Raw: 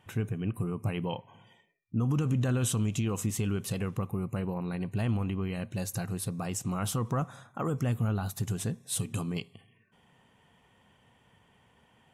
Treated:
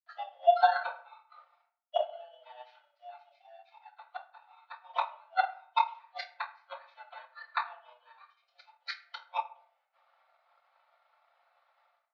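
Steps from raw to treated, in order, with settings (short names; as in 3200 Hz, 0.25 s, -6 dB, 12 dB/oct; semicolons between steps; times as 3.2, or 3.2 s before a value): FFT order left unsorted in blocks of 16 samples; spectral noise reduction 24 dB; dynamic EQ 2400 Hz, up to +4 dB, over -54 dBFS, Q 1.6; AGC gain up to 16 dB; flipped gate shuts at -17 dBFS, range -38 dB; 3.91–4.7 tube stage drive 30 dB, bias 0.65; requantised 12-bit, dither none; reverb RT60 0.55 s, pre-delay 3 ms, DRR -9.5 dB; mistuned SSB +370 Hz 260–3500 Hz; transient shaper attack +6 dB, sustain -4 dB; gain -5 dB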